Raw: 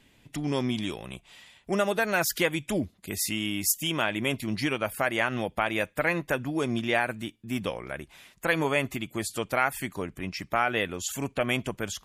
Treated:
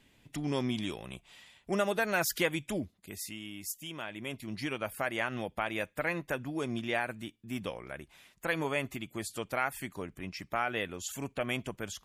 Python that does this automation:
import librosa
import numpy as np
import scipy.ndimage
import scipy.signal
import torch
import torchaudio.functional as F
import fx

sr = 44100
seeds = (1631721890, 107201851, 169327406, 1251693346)

y = fx.gain(x, sr, db=fx.line((2.55, -4.0), (3.41, -13.5), (4.05, -13.5), (4.8, -6.5)))